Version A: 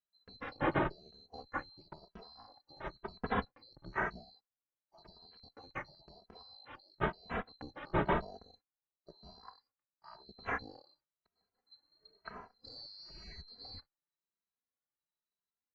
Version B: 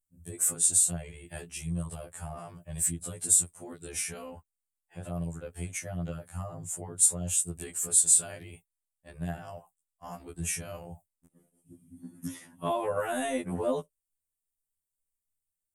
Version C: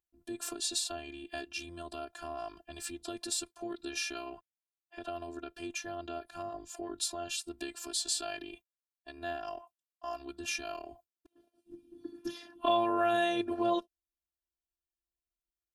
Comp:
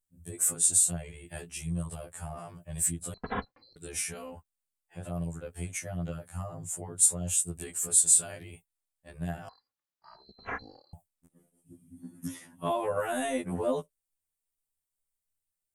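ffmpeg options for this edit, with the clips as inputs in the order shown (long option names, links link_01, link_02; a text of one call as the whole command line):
ffmpeg -i take0.wav -i take1.wav -filter_complex "[0:a]asplit=2[link_01][link_02];[1:a]asplit=3[link_03][link_04][link_05];[link_03]atrim=end=3.142[link_06];[link_01]atrim=start=3.138:end=3.762[link_07];[link_04]atrim=start=3.758:end=9.492[link_08];[link_02]atrim=start=9.488:end=10.932[link_09];[link_05]atrim=start=10.928[link_10];[link_06][link_07]acrossfade=duration=0.004:curve1=hsin:curve2=hsin[link_11];[link_11][link_08]acrossfade=duration=0.004:curve1=hsin:curve2=hsin[link_12];[link_12][link_09]acrossfade=duration=0.004:curve1=hsin:curve2=hsin[link_13];[link_13][link_10]acrossfade=duration=0.004:curve1=hsin:curve2=hsin" out.wav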